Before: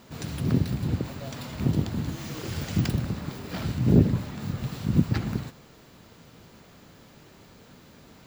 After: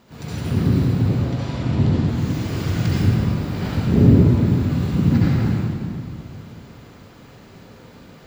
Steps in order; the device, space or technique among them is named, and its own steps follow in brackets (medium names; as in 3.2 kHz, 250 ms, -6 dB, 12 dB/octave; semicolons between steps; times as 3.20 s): 1.09–2.08 s: low-pass 6.6 kHz 12 dB/octave; swimming-pool hall (reverberation RT60 2.3 s, pre-delay 62 ms, DRR -8.5 dB; treble shelf 4.9 kHz -6 dB); trim -1.5 dB